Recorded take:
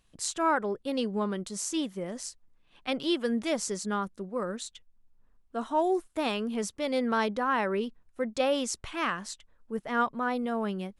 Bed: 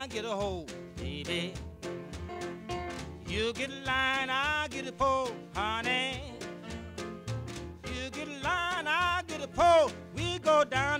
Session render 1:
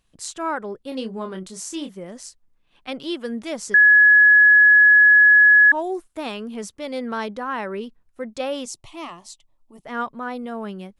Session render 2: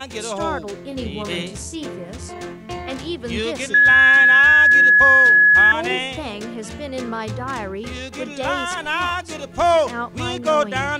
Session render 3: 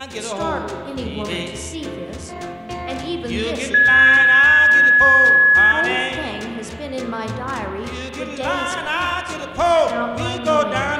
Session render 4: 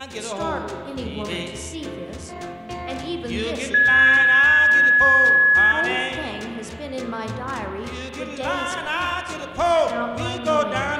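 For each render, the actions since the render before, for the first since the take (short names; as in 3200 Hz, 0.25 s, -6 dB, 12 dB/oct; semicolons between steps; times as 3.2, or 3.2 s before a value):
0.89–1.95 doubler 27 ms -6.5 dB; 3.74–5.72 bleep 1690 Hz -8.5 dBFS; 8.65–9.85 fixed phaser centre 310 Hz, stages 8
add bed +6.5 dB
spring tank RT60 1.9 s, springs 38/55 ms, chirp 25 ms, DRR 4.5 dB
gain -3 dB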